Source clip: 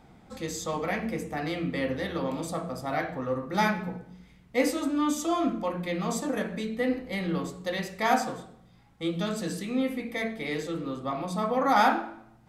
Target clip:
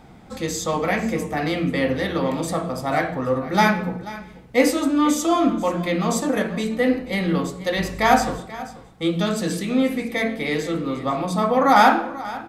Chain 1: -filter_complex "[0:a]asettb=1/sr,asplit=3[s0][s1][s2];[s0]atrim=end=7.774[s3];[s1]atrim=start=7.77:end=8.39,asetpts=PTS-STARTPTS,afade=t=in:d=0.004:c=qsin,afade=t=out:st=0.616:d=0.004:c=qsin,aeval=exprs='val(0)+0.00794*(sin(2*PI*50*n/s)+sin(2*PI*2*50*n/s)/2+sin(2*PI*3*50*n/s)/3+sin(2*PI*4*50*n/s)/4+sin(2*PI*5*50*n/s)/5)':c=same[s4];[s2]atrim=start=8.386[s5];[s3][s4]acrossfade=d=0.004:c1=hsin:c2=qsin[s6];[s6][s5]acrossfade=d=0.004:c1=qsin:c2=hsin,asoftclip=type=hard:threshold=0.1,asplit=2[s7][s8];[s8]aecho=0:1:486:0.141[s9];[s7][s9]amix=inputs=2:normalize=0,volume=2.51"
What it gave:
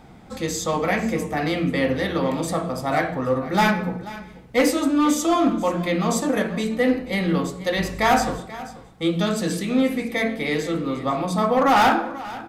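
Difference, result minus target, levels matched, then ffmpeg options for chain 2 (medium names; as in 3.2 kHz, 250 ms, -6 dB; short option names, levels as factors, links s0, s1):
hard clipper: distortion +24 dB
-filter_complex "[0:a]asettb=1/sr,asplit=3[s0][s1][s2];[s0]atrim=end=7.774[s3];[s1]atrim=start=7.77:end=8.39,asetpts=PTS-STARTPTS,afade=t=in:d=0.004:c=qsin,afade=t=out:st=0.616:d=0.004:c=qsin,aeval=exprs='val(0)+0.00794*(sin(2*PI*50*n/s)+sin(2*PI*2*50*n/s)/2+sin(2*PI*3*50*n/s)/3+sin(2*PI*4*50*n/s)/4+sin(2*PI*5*50*n/s)/5)':c=same[s4];[s2]atrim=start=8.386[s5];[s3][s4]acrossfade=d=0.004:c1=hsin:c2=qsin[s6];[s6][s5]acrossfade=d=0.004:c1=qsin:c2=hsin,asoftclip=type=hard:threshold=0.251,asplit=2[s7][s8];[s8]aecho=0:1:486:0.141[s9];[s7][s9]amix=inputs=2:normalize=0,volume=2.51"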